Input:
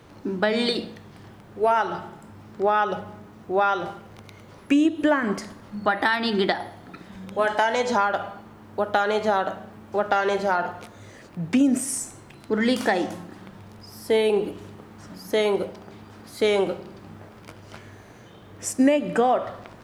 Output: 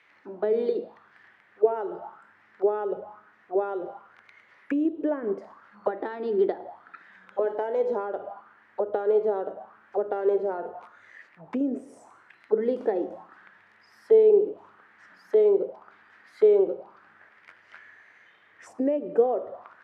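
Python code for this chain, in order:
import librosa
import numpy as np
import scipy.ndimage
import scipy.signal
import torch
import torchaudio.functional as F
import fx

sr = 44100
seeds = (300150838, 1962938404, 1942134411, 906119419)

y = fx.auto_wah(x, sr, base_hz=430.0, top_hz=2200.0, q=4.4, full_db=-22.0, direction='down')
y = y * 10.0 ** (4.5 / 20.0)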